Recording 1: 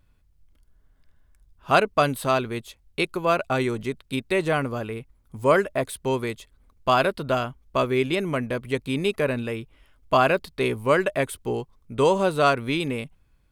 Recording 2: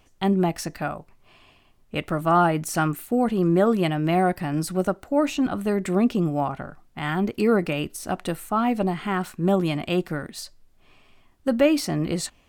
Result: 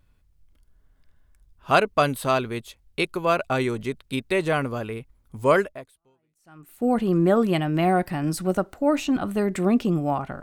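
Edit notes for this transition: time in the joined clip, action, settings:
recording 1
6.24 switch to recording 2 from 2.54 s, crossfade 1.24 s exponential

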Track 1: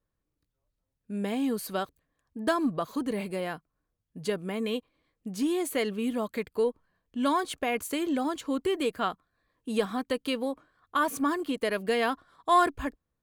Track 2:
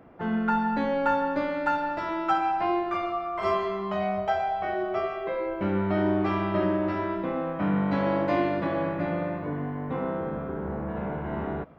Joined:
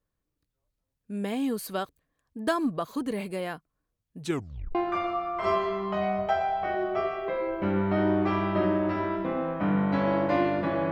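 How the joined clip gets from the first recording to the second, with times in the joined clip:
track 1
4.2 tape stop 0.55 s
4.75 switch to track 2 from 2.74 s

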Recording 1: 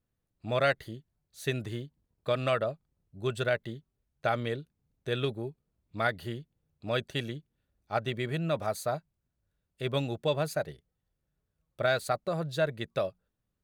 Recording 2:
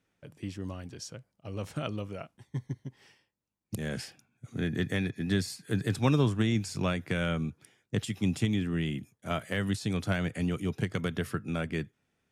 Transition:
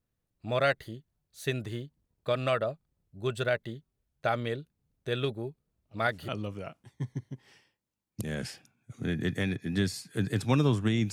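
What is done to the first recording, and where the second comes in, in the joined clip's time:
recording 1
5.84 add recording 2 from 1.38 s 0.44 s -17.5 dB
6.28 switch to recording 2 from 1.82 s

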